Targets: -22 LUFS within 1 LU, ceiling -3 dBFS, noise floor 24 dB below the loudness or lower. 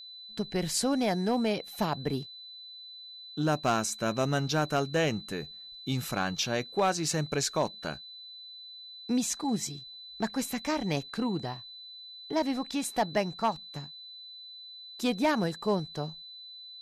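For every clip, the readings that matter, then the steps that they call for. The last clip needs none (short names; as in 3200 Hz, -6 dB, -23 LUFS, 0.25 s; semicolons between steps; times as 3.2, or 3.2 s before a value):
clipped 0.3%; flat tops at -19.0 dBFS; steady tone 4000 Hz; tone level -44 dBFS; loudness -31.0 LUFS; peak -19.0 dBFS; loudness target -22.0 LUFS
-> clip repair -19 dBFS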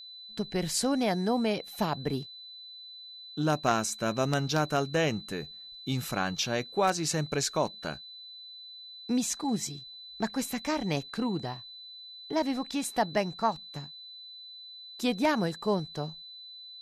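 clipped 0.0%; steady tone 4000 Hz; tone level -44 dBFS
-> notch 4000 Hz, Q 30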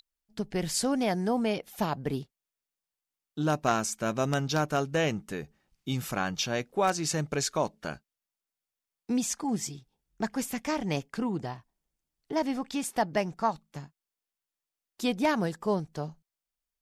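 steady tone none; loudness -30.5 LUFS; peak -10.0 dBFS; loudness target -22.0 LUFS
-> gain +8.5 dB; limiter -3 dBFS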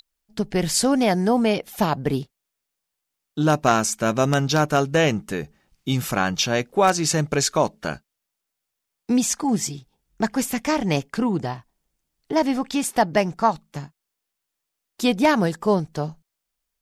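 loudness -22.0 LUFS; peak -3.0 dBFS; noise floor -82 dBFS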